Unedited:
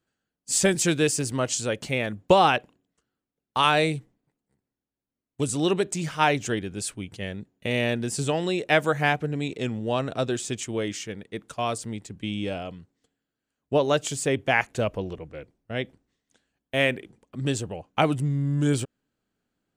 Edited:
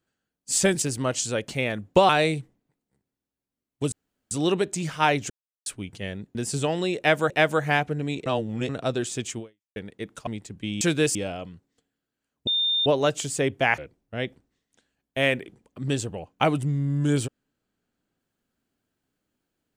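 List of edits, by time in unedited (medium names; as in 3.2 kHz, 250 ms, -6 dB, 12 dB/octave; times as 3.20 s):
0.82–1.16 s: move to 12.41 s
2.43–3.67 s: delete
5.50 s: insert room tone 0.39 s
6.49–6.85 s: mute
7.54–8.00 s: delete
8.63–8.95 s: loop, 2 plays
9.59–10.02 s: reverse
10.72–11.09 s: fade out exponential
11.60–11.87 s: delete
13.73 s: add tone 3.62 kHz -20.5 dBFS 0.39 s
14.65–15.35 s: delete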